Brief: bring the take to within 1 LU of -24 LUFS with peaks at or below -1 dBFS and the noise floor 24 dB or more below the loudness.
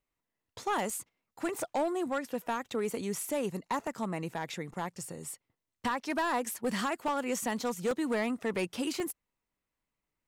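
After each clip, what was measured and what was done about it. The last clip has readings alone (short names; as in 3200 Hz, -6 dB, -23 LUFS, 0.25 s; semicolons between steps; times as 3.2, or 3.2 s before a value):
clipped 1.3%; flat tops at -25.0 dBFS; dropouts 5; longest dropout 1.9 ms; loudness -34.0 LUFS; peak -25.0 dBFS; loudness target -24.0 LUFS
-> clip repair -25 dBFS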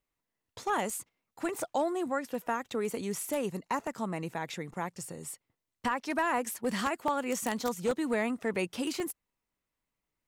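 clipped 0.0%; dropouts 5; longest dropout 1.9 ms
-> interpolate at 0.9/3.87/7.08/7.91/9, 1.9 ms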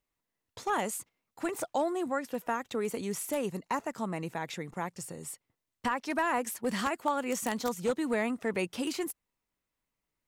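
dropouts 0; loudness -33.5 LUFS; peak -14.5 dBFS; loudness target -24.0 LUFS
-> gain +9.5 dB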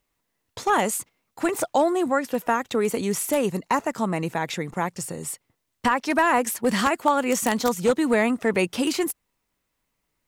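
loudness -24.0 LUFS; peak -5.0 dBFS; noise floor -77 dBFS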